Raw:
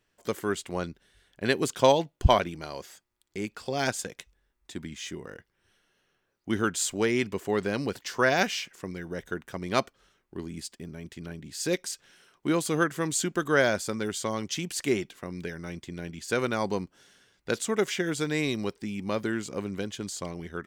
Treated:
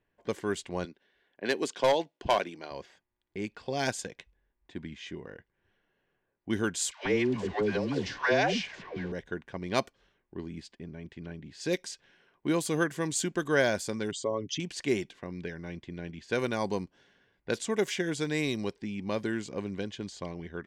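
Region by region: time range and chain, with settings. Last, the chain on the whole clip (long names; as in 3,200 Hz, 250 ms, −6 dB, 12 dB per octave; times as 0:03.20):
0:00.85–0:02.71: three-way crossover with the lows and the highs turned down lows −23 dB, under 220 Hz, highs −13 dB, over 7,700 Hz + gain into a clipping stage and back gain 15.5 dB
0:06.91–0:09.12: converter with a step at zero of −35.5 dBFS + Bessel low-pass filter 4,300 Hz, order 4 + all-pass dispersion lows, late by 139 ms, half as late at 630 Hz
0:14.11–0:14.60: spectral envelope exaggerated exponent 2 + comb filter 7.2 ms, depth 49%
whole clip: notch filter 1,300 Hz, Q 5.6; low-pass that shuts in the quiet parts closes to 2,000 Hz, open at −23 dBFS; level −2 dB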